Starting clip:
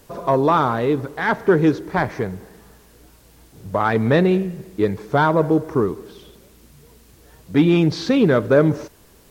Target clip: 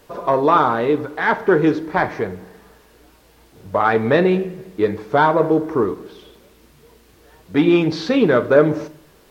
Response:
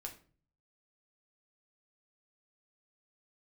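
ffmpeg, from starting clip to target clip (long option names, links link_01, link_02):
-filter_complex "[0:a]asplit=2[link_01][link_02];[link_02]highpass=250,lowpass=5100[link_03];[1:a]atrim=start_sample=2205[link_04];[link_03][link_04]afir=irnorm=-1:irlink=0,volume=4.5dB[link_05];[link_01][link_05]amix=inputs=2:normalize=0,volume=-3.5dB"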